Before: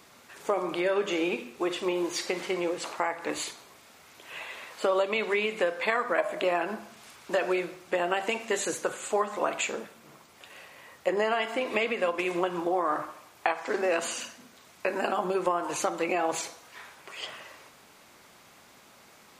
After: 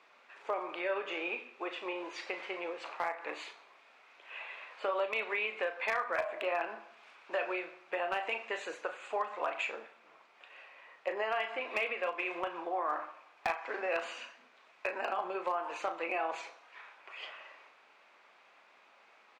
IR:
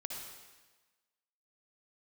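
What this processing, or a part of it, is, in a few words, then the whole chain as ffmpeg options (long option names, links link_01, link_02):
megaphone: -filter_complex "[0:a]highpass=560,lowpass=2700,equalizer=frequency=2500:width_type=o:width=0.21:gain=6,asoftclip=type=hard:threshold=-18.5dB,asplit=2[link_01][link_02];[link_02]adelay=36,volume=-9.5dB[link_03];[link_01][link_03]amix=inputs=2:normalize=0,volume=-5dB"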